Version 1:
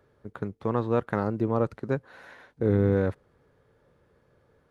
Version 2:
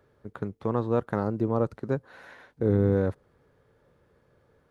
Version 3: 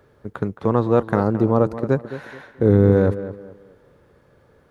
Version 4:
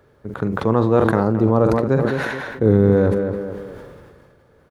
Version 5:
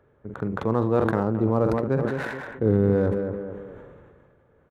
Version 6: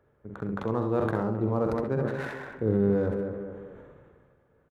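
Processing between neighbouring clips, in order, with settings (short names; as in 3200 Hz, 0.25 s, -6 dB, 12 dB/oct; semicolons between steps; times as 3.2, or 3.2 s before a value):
dynamic EQ 2300 Hz, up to -6 dB, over -46 dBFS, Q 1
tape echo 0.217 s, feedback 34%, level -11 dB, low-pass 2400 Hz; gain +8.5 dB
doubler 45 ms -14 dB; sustainer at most 29 dB/s
Wiener smoothing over 9 samples; gain -6 dB
early reflections 65 ms -7 dB, 80 ms -15 dB; gain -5.5 dB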